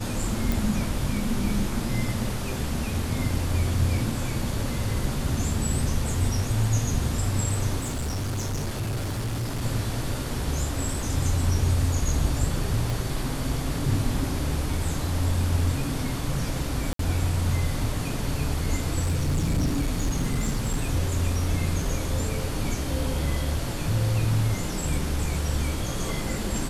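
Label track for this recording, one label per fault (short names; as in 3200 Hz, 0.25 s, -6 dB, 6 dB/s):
0.520000	0.520000	pop
7.800000	9.630000	clipped -25 dBFS
12.900000	12.900000	pop
16.930000	16.990000	gap 63 ms
19.020000	20.850000	clipped -20 dBFS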